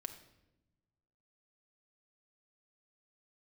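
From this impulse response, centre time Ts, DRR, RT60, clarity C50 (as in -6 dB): 11 ms, 5.5 dB, 0.95 s, 10.5 dB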